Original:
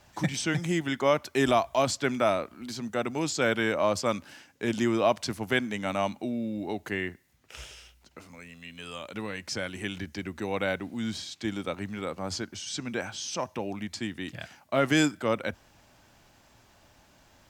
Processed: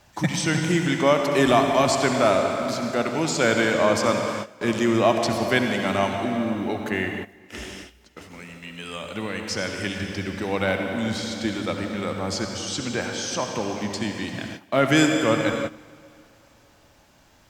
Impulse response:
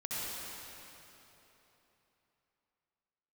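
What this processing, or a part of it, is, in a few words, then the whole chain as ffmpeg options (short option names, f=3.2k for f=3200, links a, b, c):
keyed gated reverb: -filter_complex "[0:a]asplit=3[a][b][c];[1:a]atrim=start_sample=2205[d];[b][d]afir=irnorm=-1:irlink=0[e];[c]apad=whole_len=771569[f];[e][f]sidechaingate=range=-16dB:threshold=-50dB:ratio=16:detection=peak,volume=-4dB[g];[a][g]amix=inputs=2:normalize=0,volume=2dB"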